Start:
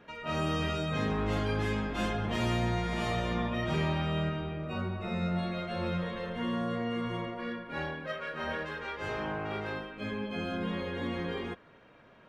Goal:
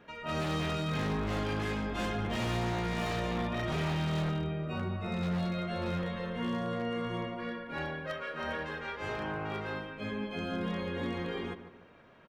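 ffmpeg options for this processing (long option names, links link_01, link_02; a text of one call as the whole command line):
ffmpeg -i in.wav -filter_complex "[0:a]asplit=2[link_01][link_02];[link_02]adelay=147,lowpass=frequency=2000:poles=1,volume=-11dB,asplit=2[link_03][link_04];[link_04]adelay=147,lowpass=frequency=2000:poles=1,volume=0.39,asplit=2[link_05][link_06];[link_06]adelay=147,lowpass=frequency=2000:poles=1,volume=0.39,asplit=2[link_07][link_08];[link_08]adelay=147,lowpass=frequency=2000:poles=1,volume=0.39[link_09];[link_01][link_03][link_05][link_07][link_09]amix=inputs=5:normalize=0,aeval=exprs='0.0531*(abs(mod(val(0)/0.0531+3,4)-2)-1)':channel_layout=same,volume=-1dB" out.wav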